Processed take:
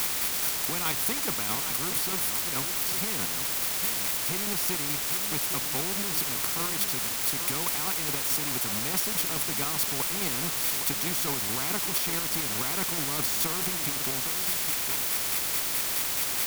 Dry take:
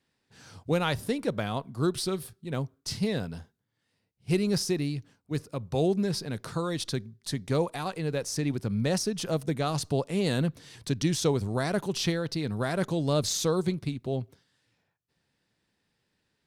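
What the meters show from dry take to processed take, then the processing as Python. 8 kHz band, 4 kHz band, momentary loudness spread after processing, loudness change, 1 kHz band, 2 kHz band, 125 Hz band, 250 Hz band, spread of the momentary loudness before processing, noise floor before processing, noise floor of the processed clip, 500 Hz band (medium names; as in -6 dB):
+11.0 dB, +5.5 dB, 1 LU, +3.5 dB, +2.0 dB, +6.0 dB, -10.0 dB, -8.0 dB, 8 LU, -78 dBFS, -31 dBFS, -9.0 dB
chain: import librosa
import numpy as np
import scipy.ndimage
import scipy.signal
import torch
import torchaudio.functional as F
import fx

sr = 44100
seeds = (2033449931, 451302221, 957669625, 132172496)

p1 = x + 0.5 * 10.0 ** (-22.5 / 20.0) * np.diff(np.sign(x), prepend=np.sign(x[:1]))
p2 = fx.band_shelf(p1, sr, hz=5200.0, db=-8.5, octaves=1.7)
p3 = fx.chopper(p2, sr, hz=4.7, depth_pct=60, duty_pct=30)
p4 = scipy.signal.sosfilt(scipy.signal.butter(2, 200.0, 'highpass', fs=sr, output='sos'), p3)
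p5 = p4 + 0.81 * np.pad(p4, (int(0.9 * sr / 1000.0), 0))[:len(p4)]
p6 = fx.quant_companded(p5, sr, bits=2)
p7 = p5 + F.gain(torch.from_numpy(p6), -11.0).numpy()
p8 = p7 + 10.0 ** (-15.0 / 20.0) * np.pad(p7, (int(811 * sr / 1000.0), 0))[:len(p7)]
p9 = fx.quant_dither(p8, sr, seeds[0], bits=6, dither='triangular')
y = fx.spectral_comp(p9, sr, ratio=2.0)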